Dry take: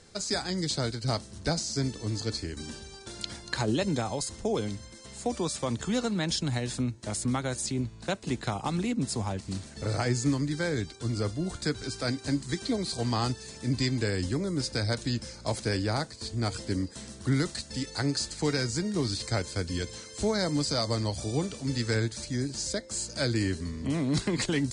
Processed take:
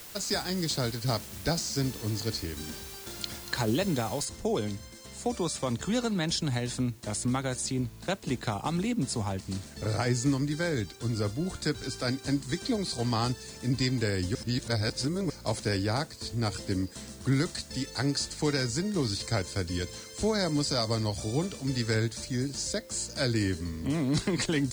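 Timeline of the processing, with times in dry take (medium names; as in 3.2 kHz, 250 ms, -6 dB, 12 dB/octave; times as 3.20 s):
4.25 s: noise floor step -46 dB -60 dB
14.35–15.30 s: reverse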